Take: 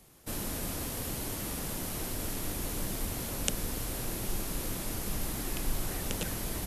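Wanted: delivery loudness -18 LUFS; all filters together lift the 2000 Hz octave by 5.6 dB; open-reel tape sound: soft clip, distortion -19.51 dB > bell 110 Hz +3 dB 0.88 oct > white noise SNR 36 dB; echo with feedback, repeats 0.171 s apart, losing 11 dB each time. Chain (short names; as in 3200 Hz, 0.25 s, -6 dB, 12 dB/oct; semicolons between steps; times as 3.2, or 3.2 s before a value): bell 2000 Hz +7 dB; feedback echo 0.171 s, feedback 28%, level -11 dB; soft clip -20.5 dBFS; bell 110 Hz +3 dB 0.88 oct; white noise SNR 36 dB; gain +16.5 dB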